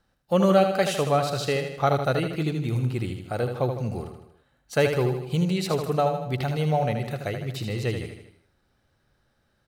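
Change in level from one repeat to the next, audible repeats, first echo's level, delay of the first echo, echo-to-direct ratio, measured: -5.5 dB, 5, -7.0 dB, 78 ms, -5.5 dB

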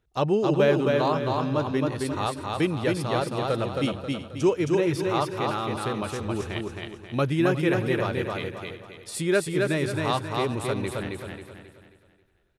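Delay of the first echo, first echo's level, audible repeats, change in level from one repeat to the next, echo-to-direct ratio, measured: 0.268 s, -3.0 dB, 9, no steady repeat, -2.0 dB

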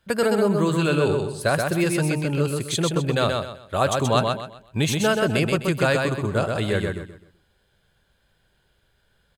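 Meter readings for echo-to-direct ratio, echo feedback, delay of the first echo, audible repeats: -3.5 dB, 30%, 0.128 s, 3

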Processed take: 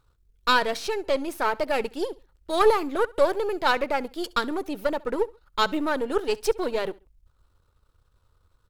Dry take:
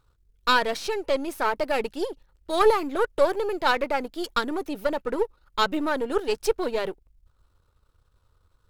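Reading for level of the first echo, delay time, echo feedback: -23.0 dB, 68 ms, 32%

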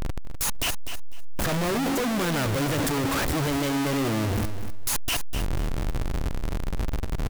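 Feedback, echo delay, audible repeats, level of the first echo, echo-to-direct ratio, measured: 19%, 0.25 s, 2, -10.0 dB, -10.0 dB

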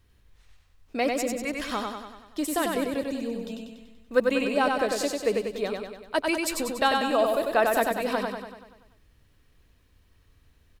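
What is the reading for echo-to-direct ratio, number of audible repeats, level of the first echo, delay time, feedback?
-2.0 dB, 7, -3.5 dB, 96 ms, 56%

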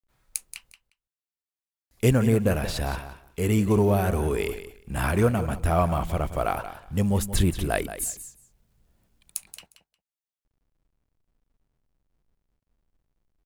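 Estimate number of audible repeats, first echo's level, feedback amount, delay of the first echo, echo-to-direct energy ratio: 2, -12.0 dB, 16%, 0.178 s, -12.0 dB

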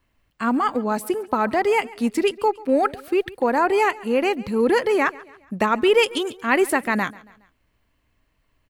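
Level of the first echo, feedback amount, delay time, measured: -21.0 dB, 46%, 0.139 s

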